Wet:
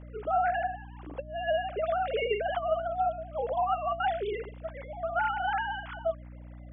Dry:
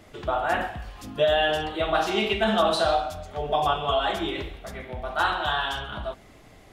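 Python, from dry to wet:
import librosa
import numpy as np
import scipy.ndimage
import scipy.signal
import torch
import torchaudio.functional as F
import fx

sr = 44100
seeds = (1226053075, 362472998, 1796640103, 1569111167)

y = fx.sine_speech(x, sr)
y = fx.over_compress(y, sr, threshold_db=-26.0, ratio=-0.5)
y = fx.lowpass(y, sr, hz=1300.0, slope=6)
y = fx.add_hum(y, sr, base_hz=60, snr_db=14)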